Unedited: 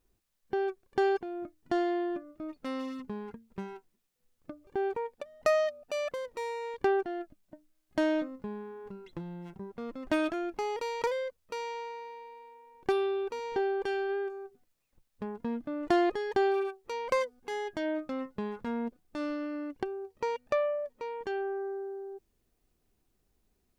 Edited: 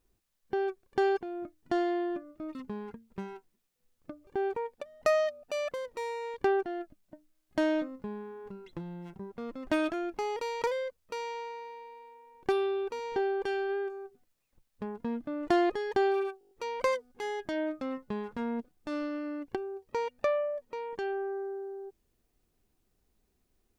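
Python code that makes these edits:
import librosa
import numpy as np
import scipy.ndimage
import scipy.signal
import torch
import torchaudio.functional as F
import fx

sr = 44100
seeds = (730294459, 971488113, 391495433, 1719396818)

y = fx.edit(x, sr, fx.cut(start_s=2.55, length_s=0.4),
    fx.stutter(start_s=16.79, slice_s=0.02, count=7), tone=tone)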